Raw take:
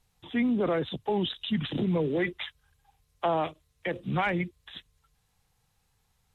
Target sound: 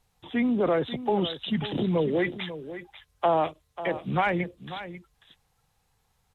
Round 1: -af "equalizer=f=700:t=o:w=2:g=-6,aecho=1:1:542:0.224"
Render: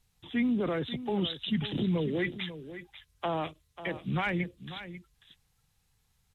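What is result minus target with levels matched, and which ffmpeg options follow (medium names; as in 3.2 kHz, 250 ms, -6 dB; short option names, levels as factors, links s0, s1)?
500 Hz band -3.5 dB
-af "equalizer=f=700:t=o:w=2:g=4.5,aecho=1:1:542:0.224"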